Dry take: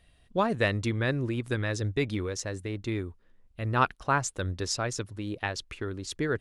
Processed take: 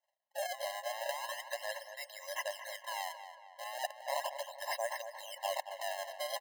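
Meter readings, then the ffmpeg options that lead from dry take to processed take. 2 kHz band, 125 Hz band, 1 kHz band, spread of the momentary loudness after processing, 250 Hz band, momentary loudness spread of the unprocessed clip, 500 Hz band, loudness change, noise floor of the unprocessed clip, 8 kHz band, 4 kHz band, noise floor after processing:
−8.5 dB, below −40 dB, −7.0 dB, 7 LU, below −40 dB, 9 LU, −7.5 dB, −9.5 dB, −62 dBFS, −7.5 dB, −4.0 dB, −81 dBFS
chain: -filter_complex "[0:a]agate=range=-33dB:threshold=-46dB:ratio=3:detection=peak,lowshelf=frequency=480:gain=7,areverse,acompressor=threshold=-40dB:ratio=10,areverse,acrusher=samples=27:mix=1:aa=0.000001:lfo=1:lforange=43.2:lforate=0.36,asplit=2[link_01][link_02];[link_02]adelay=228,lowpass=frequency=2900:poles=1,volume=-9.5dB,asplit=2[link_03][link_04];[link_04]adelay=228,lowpass=frequency=2900:poles=1,volume=0.51,asplit=2[link_05][link_06];[link_06]adelay=228,lowpass=frequency=2900:poles=1,volume=0.51,asplit=2[link_07][link_08];[link_08]adelay=228,lowpass=frequency=2900:poles=1,volume=0.51,asplit=2[link_09][link_10];[link_10]adelay=228,lowpass=frequency=2900:poles=1,volume=0.51,asplit=2[link_11][link_12];[link_12]adelay=228,lowpass=frequency=2900:poles=1,volume=0.51[link_13];[link_03][link_05][link_07][link_09][link_11][link_13]amix=inputs=6:normalize=0[link_14];[link_01][link_14]amix=inputs=2:normalize=0,afftfilt=real='re*eq(mod(floor(b*sr/1024/540),2),1)':imag='im*eq(mod(floor(b*sr/1024/540),2),1)':win_size=1024:overlap=0.75,volume=13dB"

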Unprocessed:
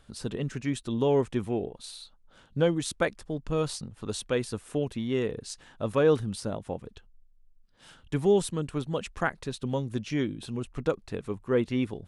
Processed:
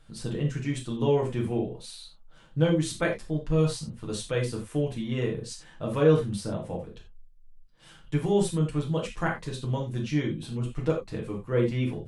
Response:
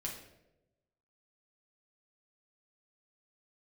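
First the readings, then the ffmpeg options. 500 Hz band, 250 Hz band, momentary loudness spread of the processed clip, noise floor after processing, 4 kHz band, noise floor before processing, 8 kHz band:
0.0 dB, +1.5 dB, 11 LU, −53 dBFS, 0.0 dB, −59 dBFS, 0.0 dB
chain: -filter_complex "[1:a]atrim=start_sample=2205,atrim=end_sample=4410[link_01];[0:a][link_01]afir=irnorm=-1:irlink=0,volume=1dB"

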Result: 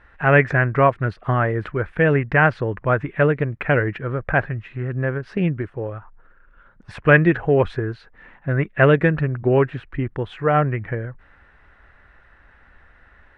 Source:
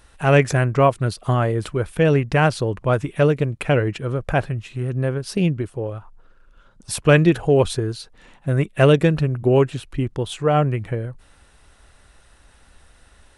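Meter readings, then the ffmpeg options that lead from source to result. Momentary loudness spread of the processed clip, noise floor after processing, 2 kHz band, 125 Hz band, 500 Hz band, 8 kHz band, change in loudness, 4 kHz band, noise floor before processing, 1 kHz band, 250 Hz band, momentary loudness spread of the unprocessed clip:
13 LU, −53 dBFS, +6.0 dB, −1.5 dB, −1.0 dB, below −25 dB, 0.0 dB, −8.5 dB, −54 dBFS, +1.5 dB, −1.5 dB, 12 LU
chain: -af "lowpass=frequency=1800:width_type=q:width=2.9,volume=-1.5dB"

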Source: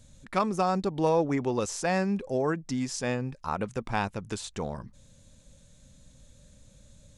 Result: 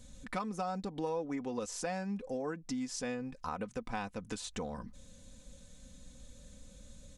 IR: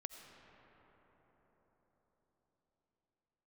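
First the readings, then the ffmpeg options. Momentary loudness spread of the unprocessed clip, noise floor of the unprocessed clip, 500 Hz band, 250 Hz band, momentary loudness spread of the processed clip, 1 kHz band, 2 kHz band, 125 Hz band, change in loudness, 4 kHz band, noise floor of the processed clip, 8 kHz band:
10 LU, −58 dBFS, −10.0 dB, −8.0 dB, 19 LU, −9.5 dB, −9.0 dB, −12.0 dB, −9.5 dB, −6.5 dB, −57 dBFS, −5.5 dB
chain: -af "aecho=1:1:4:0.57,acompressor=threshold=-38dB:ratio=3"

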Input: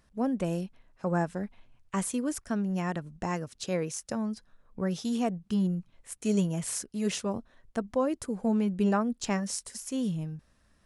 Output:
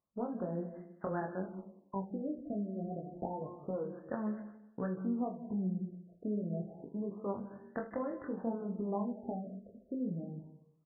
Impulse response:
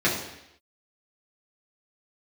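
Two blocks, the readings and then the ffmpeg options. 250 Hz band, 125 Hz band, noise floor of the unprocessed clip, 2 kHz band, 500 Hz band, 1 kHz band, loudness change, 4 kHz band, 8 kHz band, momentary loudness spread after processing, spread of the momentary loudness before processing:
−8.0 dB, −8.5 dB, −66 dBFS, −12.0 dB, −6.5 dB, −7.0 dB, −8.0 dB, below −40 dB, below −40 dB, 8 LU, 9 LU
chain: -filter_complex "[0:a]highpass=frequency=280:poles=1,agate=range=-22dB:threshold=-58dB:ratio=16:detection=peak,lowpass=3300,acompressor=threshold=-39dB:ratio=6,aecho=1:1:43|78:0.282|0.188,flanger=delay=20:depth=4.1:speed=0.56,asplit=2[link_01][link_02];[1:a]atrim=start_sample=2205,adelay=149[link_03];[link_02][link_03]afir=irnorm=-1:irlink=0,volume=-28dB[link_04];[link_01][link_04]amix=inputs=2:normalize=0,afftfilt=real='re*lt(b*sr/1024,700*pow(2100/700,0.5+0.5*sin(2*PI*0.28*pts/sr)))':imag='im*lt(b*sr/1024,700*pow(2100/700,0.5+0.5*sin(2*PI*0.28*pts/sr)))':win_size=1024:overlap=0.75,volume=7dB"

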